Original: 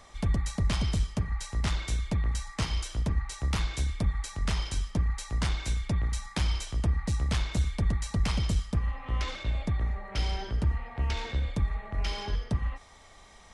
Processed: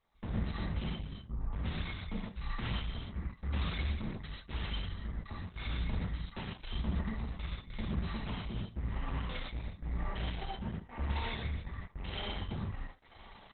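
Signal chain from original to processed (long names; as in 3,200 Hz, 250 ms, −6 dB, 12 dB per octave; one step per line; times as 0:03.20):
0:01.09–0:01.53: Bessel low-pass filter 720 Hz, order 4
0:07.31–0:08.12: compressor whose output falls as the input rises −28 dBFS, ratio −0.5
gate pattern "...xxxxxx.x..x" 197 BPM −24 dB
tuned comb filter 220 Hz, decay 0.2 s, harmonics all, mix 60%
flanger 0.27 Hz, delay 3 ms, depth 9.2 ms, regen +77%
tube saturation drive 48 dB, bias 0.65
single-tap delay 78 ms −21 dB
reverb whose tail is shaped and stops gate 170 ms flat, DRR −5 dB
level +11 dB
Opus 8 kbit/s 48,000 Hz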